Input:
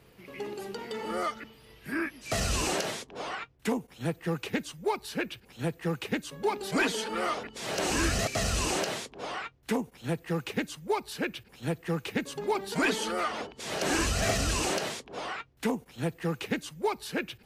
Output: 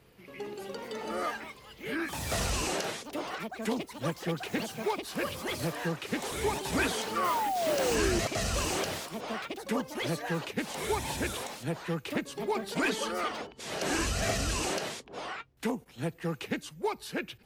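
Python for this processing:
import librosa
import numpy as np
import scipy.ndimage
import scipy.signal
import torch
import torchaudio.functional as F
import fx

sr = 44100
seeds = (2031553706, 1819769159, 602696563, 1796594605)

y = fx.echo_pitch(x, sr, ms=394, semitones=5, count=3, db_per_echo=-6.0)
y = fx.spec_paint(y, sr, seeds[0], shape='fall', start_s=7.16, length_s=1.04, low_hz=330.0, high_hz=1200.0, level_db=-28.0)
y = fx.mod_noise(y, sr, seeds[1], snr_db=15, at=(7.23, 7.94), fade=0.02)
y = y * 10.0 ** (-2.5 / 20.0)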